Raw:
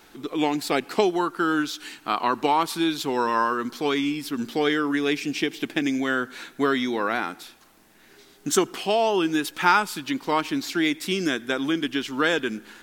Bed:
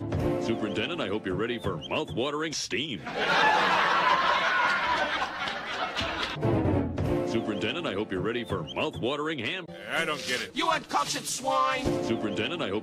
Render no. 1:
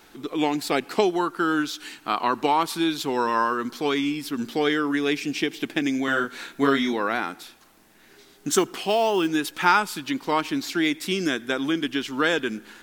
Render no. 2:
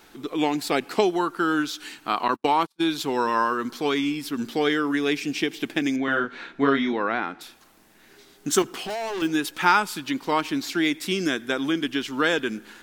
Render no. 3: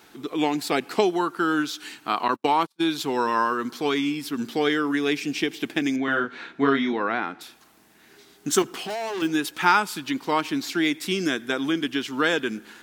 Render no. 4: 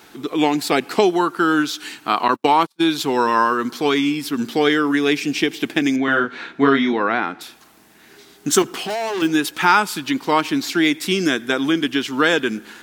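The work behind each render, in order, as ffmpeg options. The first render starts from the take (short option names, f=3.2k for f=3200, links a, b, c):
-filter_complex "[0:a]asettb=1/sr,asplit=3[a][b][c];[a]atrim=end=6.054[d];[b]atrim=start=6.05:end=6.93,asetpts=PTS-STARTPTS,afade=t=in:d=0.004:c=qsin,afade=t=out:st=0.876:d=0.004:c=qsin,asplit=2[e][f];[f]adelay=29,volume=-3dB[g];[e][g]amix=inputs=2:normalize=0,atrim=end_sample=38808[h];[c]atrim=start=6.926[i];[d][h]acrossfade=d=0.004:c1=hsin:c2=qsin[j];[j][i]acrossfade=d=0.004:c1=qsin:c2=hsin,asettb=1/sr,asplit=3[k][l][m];[k]atrim=end=8.524[n];[l]atrim=start=8.52:end=9.28,asetpts=PTS-STARTPTS,afade=t=in:d=0.004:c=qsin,afade=t=out:st=0.756:d=0.004:c=qsin,acrusher=bits=7:mode=log:mix=0:aa=0.000001[o];[m]atrim=start=9.276[p];[n][o]acrossfade=d=0.004:c1=hsin:c2=qsin[q];[q][p]acrossfade=d=0.004:c1=qsin:c2=hsin"
-filter_complex "[0:a]asettb=1/sr,asplit=3[a][b][c];[a]atrim=end=2.284[d];[b]atrim=start=2.28:end=2.82,asetpts=PTS-STARTPTS,afade=t=in:d=0.004:c=qsin,afade=t=out:st=0.536:d=0.004:c=qsin,agate=range=-44dB:threshold=-27dB:ratio=16:release=100:detection=peak[e];[c]atrim=start=2.816[f];[d][e]acrossfade=d=0.004:c1=hsin:c2=qsin[g];[g][f]acrossfade=d=0.004:c1=qsin:c2=hsin,asettb=1/sr,asplit=3[h][i][j];[h]atrim=end=5.964[k];[i]atrim=start=5.96:end=7.41,asetpts=PTS-STARTPTS,afade=t=in:d=0.004:c=qsin,afade=t=out:st=1.446:d=0.004:c=qsin,lowpass=3.1k[l];[j]atrim=start=7.406[m];[k][l]acrossfade=d=0.004:c1=hsin:c2=qsin[n];[n][m]acrossfade=d=0.004:c1=qsin:c2=hsin,asettb=1/sr,asplit=3[o][p][q];[o]atrim=end=8.624[r];[p]atrim=start=8.62:end=9.22,asetpts=PTS-STARTPTS,afade=t=in:d=0.004:c=qsin,afade=t=out:st=0.596:d=0.004:c=qsin,volume=28dB,asoftclip=hard,volume=-28dB[s];[q]atrim=start=9.216[t];[r][s]acrossfade=d=0.004:c1=hsin:c2=qsin[u];[u][t]acrossfade=d=0.004:c1=qsin:c2=hsin"
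-af "highpass=68,bandreject=f=550:w=16"
-af "volume=6dB,alimiter=limit=-2dB:level=0:latency=1"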